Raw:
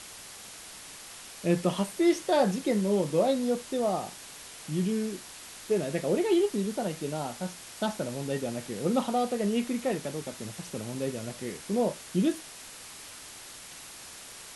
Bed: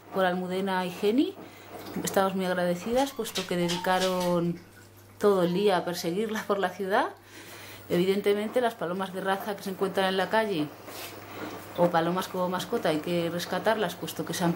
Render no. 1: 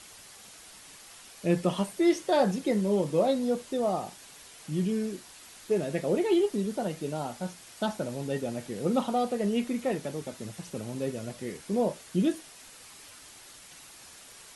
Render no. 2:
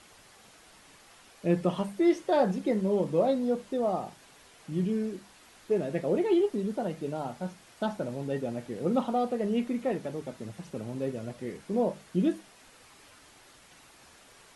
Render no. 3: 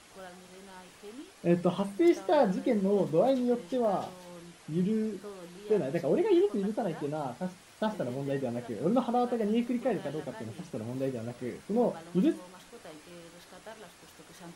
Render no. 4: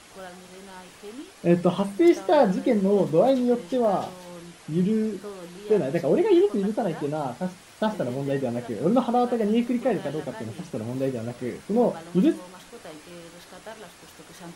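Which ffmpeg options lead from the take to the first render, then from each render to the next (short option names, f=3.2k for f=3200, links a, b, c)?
-af "afftdn=nr=6:nf=-46"
-af "highshelf=f=3.3k:g=-11,bandreject=f=50:t=h:w=6,bandreject=f=100:t=h:w=6,bandreject=f=150:t=h:w=6,bandreject=f=200:t=h:w=6"
-filter_complex "[1:a]volume=-22dB[a];[0:a][a]amix=inputs=2:normalize=0"
-af "volume=6dB"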